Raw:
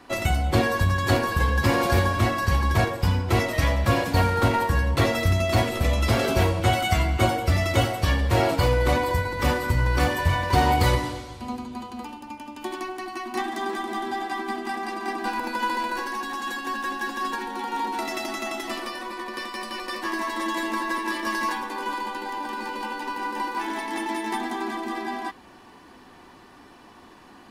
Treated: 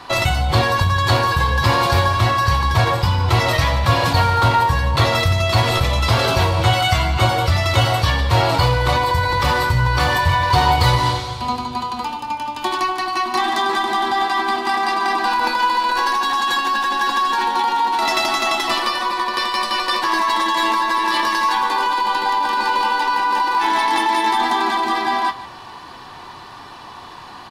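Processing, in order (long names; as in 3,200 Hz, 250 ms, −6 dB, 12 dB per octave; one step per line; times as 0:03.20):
octave-band graphic EQ 125/250/1,000/4,000 Hz +8/−7/+9/+10 dB
in parallel at −3 dB: compressor whose output falls as the input rises −24 dBFS, ratio −0.5
on the sum: double-tracking delay 25 ms −13.5 dB
single-tap delay 149 ms −15.5 dB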